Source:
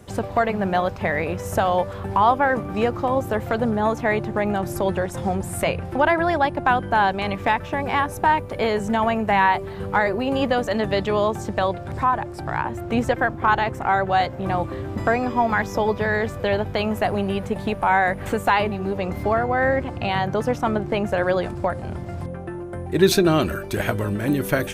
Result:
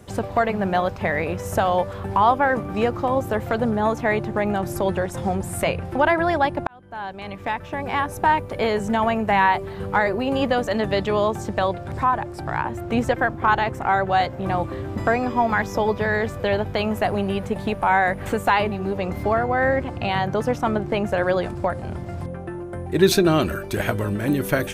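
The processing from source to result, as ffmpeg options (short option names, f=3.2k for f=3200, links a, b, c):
-filter_complex "[0:a]asplit=2[a][b];[a]atrim=end=6.67,asetpts=PTS-STARTPTS,afade=t=out:st=6.666:d=0.004:c=hsin[c];[b]atrim=start=6.67,asetpts=PTS-STARTPTS,afade=t=in:d=1.62[d];[c][d]concat=n=2:v=0:a=1"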